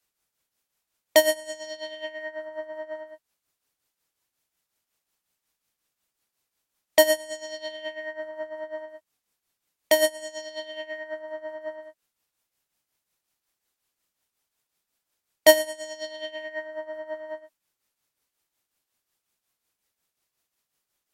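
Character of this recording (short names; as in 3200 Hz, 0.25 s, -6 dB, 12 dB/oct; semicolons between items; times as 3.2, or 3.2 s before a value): tremolo triangle 5.5 Hz, depth 65%; MP3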